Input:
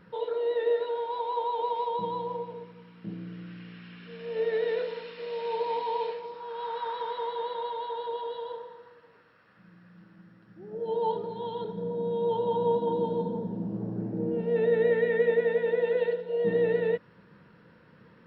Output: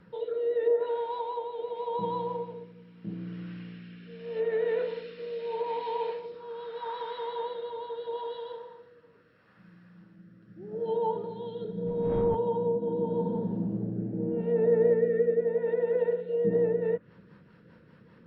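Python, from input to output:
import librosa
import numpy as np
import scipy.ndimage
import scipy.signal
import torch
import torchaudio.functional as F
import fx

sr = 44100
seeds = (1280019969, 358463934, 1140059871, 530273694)

y = fx.dmg_wind(x, sr, seeds[0], corner_hz=410.0, level_db=-34.0, at=(11.86, 12.34), fade=0.02)
y = fx.low_shelf(y, sr, hz=410.0, db=3.5)
y = fx.env_lowpass_down(y, sr, base_hz=1100.0, full_db=-20.0)
y = fx.rotary_switch(y, sr, hz=0.8, then_hz=5.0, switch_at_s=16.16)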